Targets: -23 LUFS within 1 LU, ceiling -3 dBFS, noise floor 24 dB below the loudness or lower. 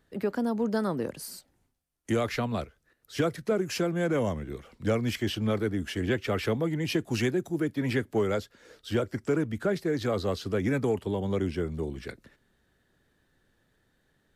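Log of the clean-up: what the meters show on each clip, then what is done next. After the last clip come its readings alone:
loudness -29.5 LUFS; peak -15.0 dBFS; loudness target -23.0 LUFS
-> gain +6.5 dB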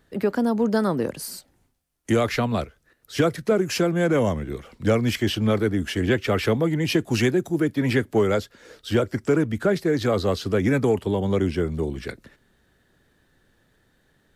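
loudness -23.0 LUFS; peak -8.5 dBFS; noise floor -65 dBFS

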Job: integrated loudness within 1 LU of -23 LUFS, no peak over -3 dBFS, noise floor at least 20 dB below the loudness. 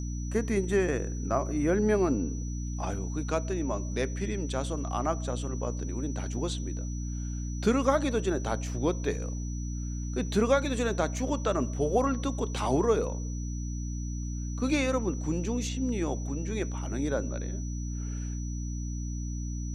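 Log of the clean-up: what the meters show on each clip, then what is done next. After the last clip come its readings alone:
hum 60 Hz; harmonics up to 300 Hz; hum level -31 dBFS; steady tone 5900 Hz; tone level -46 dBFS; loudness -30.5 LUFS; peak -10.0 dBFS; loudness target -23.0 LUFS
-> de-hum 60 Hz, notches 5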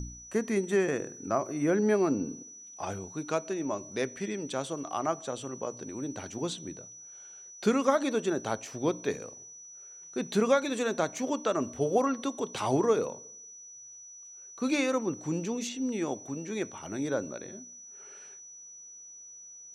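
hum none; steady tone 5900 Hz; tone level -46 dBFS
-> notch 5900 Hz, Q 30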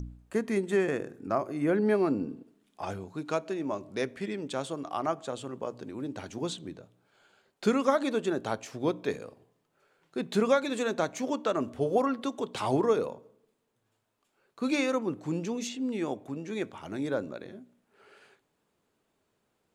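steady tone none; loudness -31.0 LUFS; peak -10.0 dBFS; loudness target -23.0 LUFS
-> gain +8 dB; limiter -3 dBFS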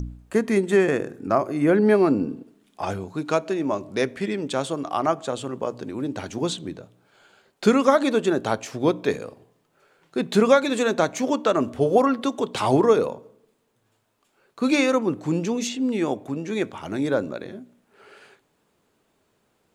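loudness -23.0 LUFS; peak -3.0 dBFS; noise floor -69 dBFS

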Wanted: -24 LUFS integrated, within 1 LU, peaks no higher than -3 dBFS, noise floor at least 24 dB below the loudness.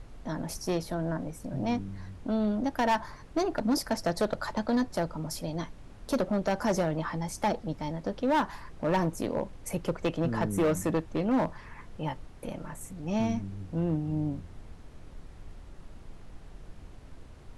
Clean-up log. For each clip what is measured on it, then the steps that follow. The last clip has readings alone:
clipped 1.1%; flat tops at -21.0 dBFS; noise floor -49 dBFS; noise floor target -55 dBFS; loudness -31.0 LUFS; peak -21.0 dBFS; loudness target -24.0 LUFS
-> clip repair -21 dBFS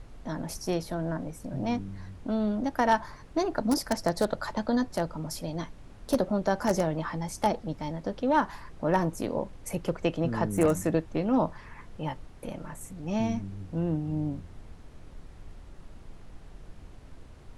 clipped 0.0%; noise floor -49 dBFS; noise floor target -54 dBFS
-> noise print and reduce 6 dB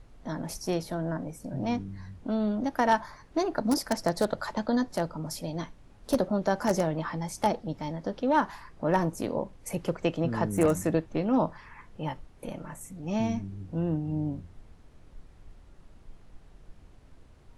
noise floor -55 dBFS; loudness -30.0 LUFS; peak -12.0 dBFS; loudness target -24.0 LUFS
-> gain +6 dB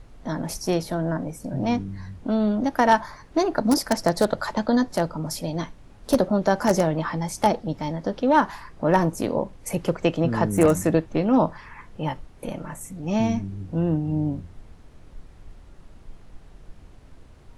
loudness -24.0 LUFS; peak -6.0 dBFS; noise floor -49 dBFS

